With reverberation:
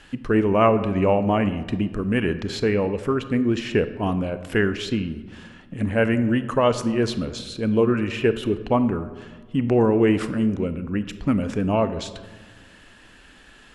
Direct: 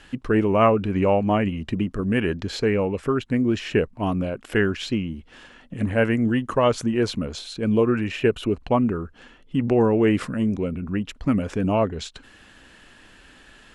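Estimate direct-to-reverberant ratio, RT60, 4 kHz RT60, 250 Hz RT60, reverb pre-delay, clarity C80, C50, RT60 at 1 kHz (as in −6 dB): 11.5 dB, 1.4 s, 0.75 s, 1.8 s, 27 ms, 14.0 dB, 12.5 dB, 1.3 s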